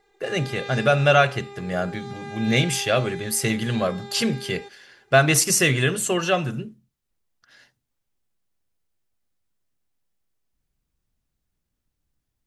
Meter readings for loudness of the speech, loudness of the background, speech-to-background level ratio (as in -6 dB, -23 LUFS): -21.5 LUFS, -38.0 LUFS, 16.5 dB